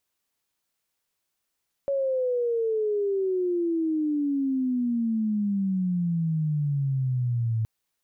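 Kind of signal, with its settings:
glide logarithmic 560 Hz → 110 Hz −22.5 dBFS → −22.5 dBFS 5.77 s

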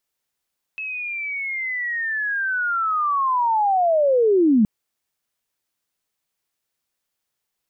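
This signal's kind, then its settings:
glide linear 2,600 Hz → 200 Hz −26.5 dBFS → −12 dBFS 3.87 s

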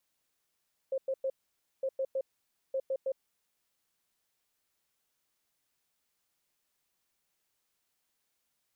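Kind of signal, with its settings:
beeps in groups sine 533 Hz, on 0.06 s, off 0.10 s, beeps 3, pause 0.53 s, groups 3, −28.5 dBFS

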